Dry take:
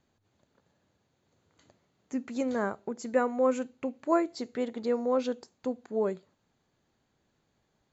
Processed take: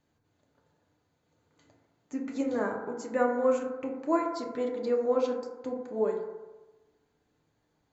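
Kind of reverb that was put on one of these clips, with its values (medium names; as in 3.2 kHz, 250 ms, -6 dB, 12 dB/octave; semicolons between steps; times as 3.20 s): FDN reverb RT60 1.2 s, low-frequency decay 0.75×, high-frequency decay 0.25×, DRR 0 dB; trim -3.5 dB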